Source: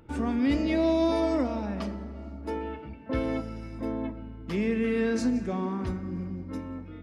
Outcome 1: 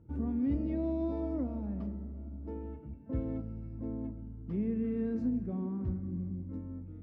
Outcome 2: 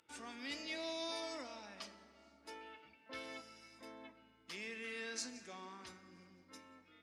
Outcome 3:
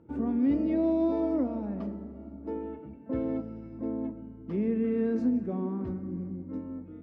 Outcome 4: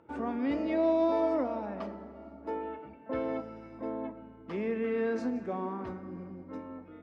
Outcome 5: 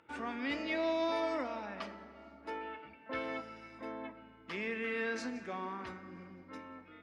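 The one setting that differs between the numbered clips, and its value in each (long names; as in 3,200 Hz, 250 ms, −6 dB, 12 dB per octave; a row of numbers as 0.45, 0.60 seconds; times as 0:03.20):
resonant band-pass, frequency: 100, 6,500, 270, 730, 1,900 Hertz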